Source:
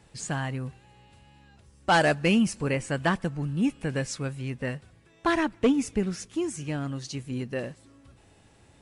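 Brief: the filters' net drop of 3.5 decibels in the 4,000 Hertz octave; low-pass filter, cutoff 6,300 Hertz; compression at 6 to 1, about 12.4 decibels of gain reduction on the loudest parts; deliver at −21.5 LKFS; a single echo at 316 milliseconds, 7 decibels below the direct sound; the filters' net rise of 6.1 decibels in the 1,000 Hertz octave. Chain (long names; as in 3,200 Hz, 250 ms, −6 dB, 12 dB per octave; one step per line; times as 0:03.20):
low-pass filter 6,300 Hz
parametric band 1,000 Hz +8 dB
parametric band 4,000 Hz −5.5 dB
downward compressor 6 to 1, threshold −26 dBFS
single-tap delay 316 ms −7 dB
level +10.5 dB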